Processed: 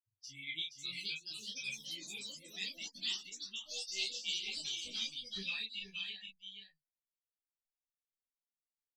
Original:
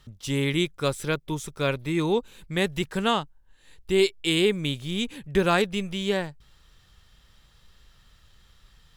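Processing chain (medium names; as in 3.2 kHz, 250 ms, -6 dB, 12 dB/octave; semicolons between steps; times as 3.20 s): expander on every frequency bin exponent 3; inverse Chebyshev high-pass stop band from 1.6 kHz, stop band 40 dB; treble shelf 5.7 kHz -5 dB; compression 6:1, threshold -44 dBFS, peak gain reduction 12.5 dB; distance through air 290 m; doubling 31 ms -3.5 dB; delay 472 ms -6 dB; ever faster or slower copies 597 ms, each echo +4 st, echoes 3; three-phase chorus; trim +16.5 dB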